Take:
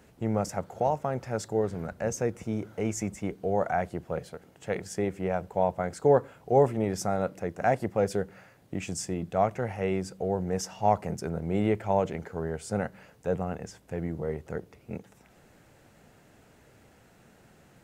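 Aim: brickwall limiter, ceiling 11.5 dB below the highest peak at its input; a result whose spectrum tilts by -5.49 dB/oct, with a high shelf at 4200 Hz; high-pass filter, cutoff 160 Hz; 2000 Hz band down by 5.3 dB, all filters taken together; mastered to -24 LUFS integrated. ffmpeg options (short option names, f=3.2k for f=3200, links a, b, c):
-af "highpass=160,equalizer=f=2k:t=o:g=-6,highshelf=f=4.2k:g=-5.5,volume=11dB,alimiter=limit=-11dB:level=0:latency=1"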